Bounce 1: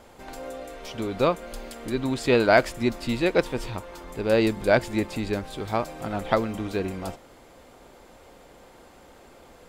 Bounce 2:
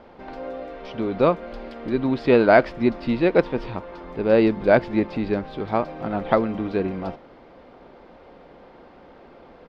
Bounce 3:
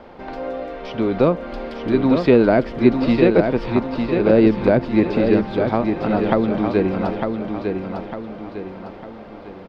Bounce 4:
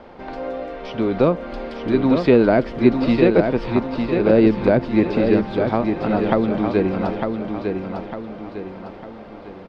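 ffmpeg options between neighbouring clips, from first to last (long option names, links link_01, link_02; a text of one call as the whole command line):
ffmpeg -i in.wav -af "firequalizer=gain_entry='entry(110,0);entry(160,6);entry(5100,-7);entry(7500,-29)':delay=0.05:min_phase=1,volume=-1dB" out.wav
ffmpeg -i in.wav -filter_complex "[0:a]acrossover=split=430[link_01][link_02];[link_02]acompressor=threshold=-25dB:ratio=6[link_03];[link_01][link_03]amix=inputs=2:normalize=0,asplit=2[link_04][link_05];[link_05]aecho=0:1:903|1806|2709|3612|4515:0.531|0.228|0.0982|0.0422|0.0181[link_06];[link_04][link_06]amix=inputs=2:normalize=0,volume=5.5dB" out.wav
ffmpeg -i in.wav -ar 24000 -c:a libmp3lame -b:a 64k out.mp3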